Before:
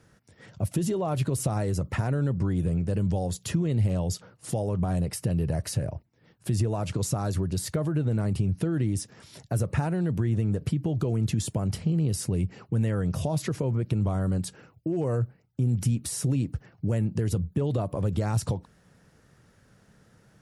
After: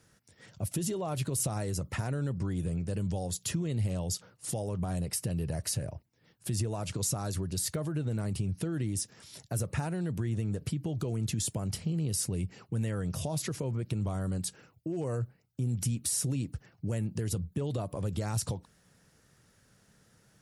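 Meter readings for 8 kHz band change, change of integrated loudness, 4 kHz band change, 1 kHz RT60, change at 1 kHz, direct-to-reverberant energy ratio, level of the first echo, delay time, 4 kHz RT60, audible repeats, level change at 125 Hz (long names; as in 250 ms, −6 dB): +2.5 dB, −5.5 dB, +0.5 dB, no reverb audible, −5.5 dB, no reverb audible, no echo audible, no echo audible, no reverb audible, no echo audible, −6.5 dB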